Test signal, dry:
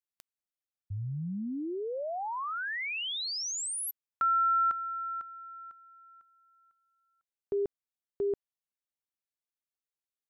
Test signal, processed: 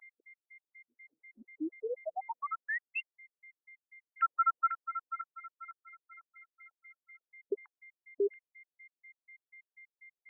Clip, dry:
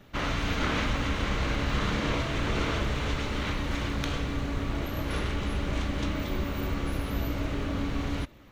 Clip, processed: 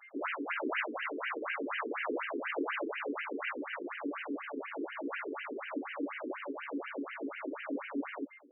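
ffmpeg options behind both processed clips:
-af "aeval=exprs='val(0)+0.00224*sin(2*PI*2100*n/s)':c=same,afftfilt=real='re*between(b*sr/1024,320*pow(2200/320,0.5+0.5*sin(2*PI*4.1*pts/sr))/1.41,320*pow(2200/320,0.5+0.5*sin(2*PI*4.1*pts/sr))*1.41)':imag='im*between(b*sr/1024,320*pow(2200/320,0.5+0.5*sin(2*PI*4.1*pts/sr))/1.41,320*pow(2200/320,0.5+0.5*sin(2*PI*4.1*pts/sr))*1.41)':win_size=1024:overlap=0.75,volume=1.26"

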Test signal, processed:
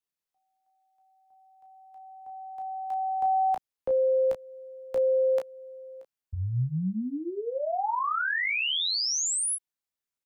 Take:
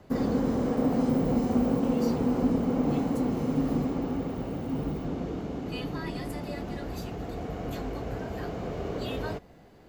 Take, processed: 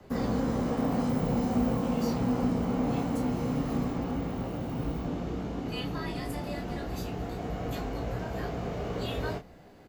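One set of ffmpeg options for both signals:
-filter_complex "[0:a]acrossover=split=230|530|2300[s0][s1][s2][s3];[s1]acompressor=threshold=0.00794:ratio=6[s4];[s0][s4][s2][s3]amix=inputs=4:normalize=0,aecho=1:1:17|32:0.473|0.473"

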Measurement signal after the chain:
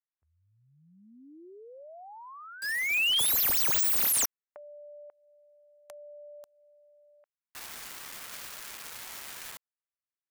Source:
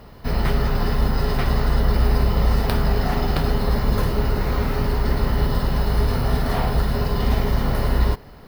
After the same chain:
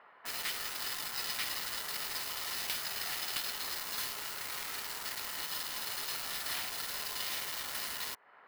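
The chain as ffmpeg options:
-filter_complex "[0:a]highpass=1400,acrossover=split=2200[s0][s1];[s0]acompressor=threshold=0.00398:ratio=5[s2];[s1]acrusher=bits=5:mix=0:aa=0.000001[s3];[s2][s3]amix=inputs=2:normalize=0,aeval=exprs='(mod(12.6*val(0)+1,2)-1)/12.6':c=same"

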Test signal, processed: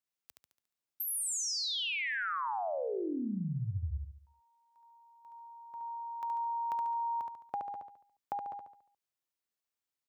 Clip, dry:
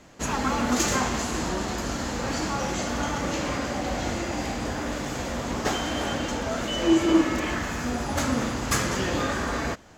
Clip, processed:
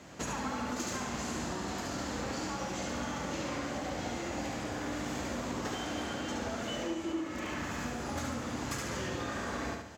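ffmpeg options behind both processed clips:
-filter_complex "[0:a]highpass=f=62:w=0.5412,highpass=f=62:w=1.3066,equalizer=f=11000:t=o:w=0.3:g=-3.5,acompressor=threshold=0.0178:ratio=10,asplit=2[s0][s1];[s1]aecho=0:1:71|142|213|284|355|426:0.631|0.284|0.128|0.0575|0.0259|0.0116[s2];[s0][s2]amix=inputs=2:normalize=0"

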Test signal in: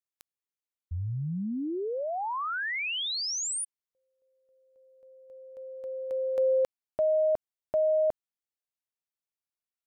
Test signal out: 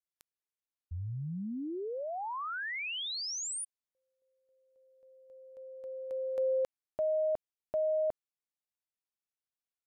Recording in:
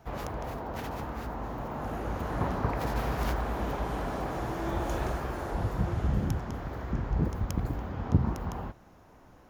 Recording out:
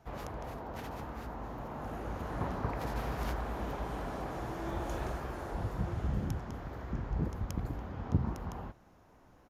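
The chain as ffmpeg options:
-af "aresample=32000,aresample=44100,volume=0.531"

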